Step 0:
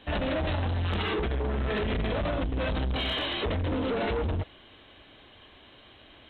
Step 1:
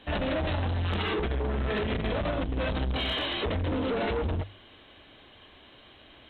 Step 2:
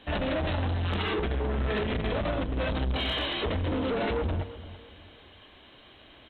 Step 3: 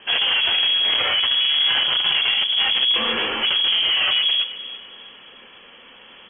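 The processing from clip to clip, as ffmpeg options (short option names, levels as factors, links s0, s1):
-af "bandreject=f=50:t=h:w=6,bandreject=f=100:t=h:w=6"
-filter_complex "[0:a]asplit=2[s0][s1];[s1]adelay=335,lowpass=f=1900:p=1,volume=0.178,asplit=2[s2][s3];[s3]adelay=335,lowpass=f=1900:p=1,volume=0.38,asplit=2[s4][s5];[s5]adelay=335,lowpass=f=1900:p=1,volume=0.38[s6];[s0][s2][s4][s6]amix=inputs=4:normalize=0"
-af "lowpass=f=2900:t=q:w=0.5098,lowpass=f=2900:t=q:w=0.6013,lowpass=f=2900:t=q:w=0.9,lowpass=f=2900:t=q:w=2.563,afreqshift=-3400,volume=2.82"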